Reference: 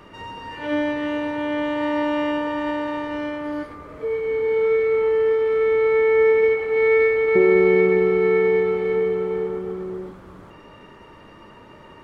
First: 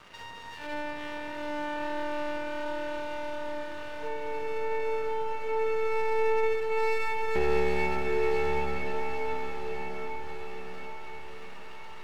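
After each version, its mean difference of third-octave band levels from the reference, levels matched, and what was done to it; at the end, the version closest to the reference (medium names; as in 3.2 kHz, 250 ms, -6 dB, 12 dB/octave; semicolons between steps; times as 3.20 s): 7.5 dB: peaking EQ 310 Hz -4.5 dB 0.77 oct; half-wave rectifier; echo that smears into a reverb 845 ms, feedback 46%, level -4 dB; tape noise reduction on one side only encoder only; trim -7 dB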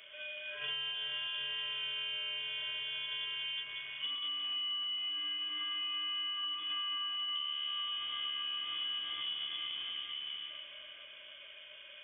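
10.5 dB: in parallel at -11.5 dB: Schmitt trigger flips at -20.5 dBFS; on the sum: two-band feedback delay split 460 Hz, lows 181 ms, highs 456 ms, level -8 dB; compression 12:1, threshold -27 dBFS, peak gain reduction 18.5 dB; frequency inversion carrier 3.4 kHz; trim -8.5 dB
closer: first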